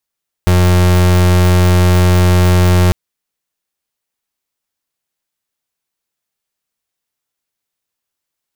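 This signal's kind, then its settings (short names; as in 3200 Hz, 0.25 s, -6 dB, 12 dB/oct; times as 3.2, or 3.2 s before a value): pulse 89.8 Hz, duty 36% -9 dBFS 2.45 s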